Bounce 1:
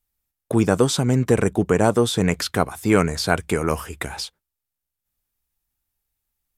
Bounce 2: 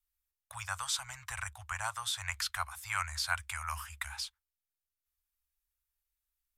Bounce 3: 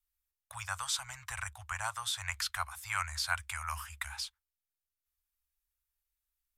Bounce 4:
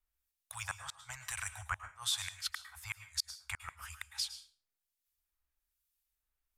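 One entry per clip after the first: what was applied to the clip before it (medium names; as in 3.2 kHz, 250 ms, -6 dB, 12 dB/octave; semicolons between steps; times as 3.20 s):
inverse Chebyshev band-stop 170–430 Hz, stop band 60 dB; trim -8.5 dB
no audible change
inverted gate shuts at -23 dBFS, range -38 dB; harmonic tremolo 1.1 Hz, depth 70%, crossover 2.3 kHz; reverberation RT60 0.35 s, pre-delay 98 ms, DRR 11 dB; trim +4 dB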